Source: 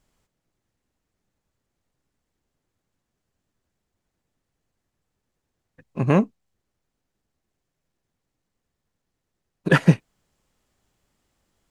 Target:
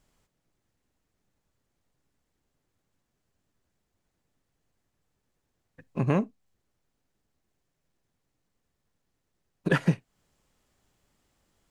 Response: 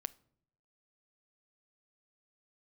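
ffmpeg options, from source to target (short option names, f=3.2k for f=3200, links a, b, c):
-filter_complex "[0:a]acompressor=threshold=-26dB:ratio=2,asplit=2[a][b];[1:a]atrim=start_sample=2205,atrim=end_sample=3528[c];[b][c]afir=irnorm=-1:irlink=0,volume=2dB[d];[a][d]amix=inputs=2:normalize=0,volume=-6dB"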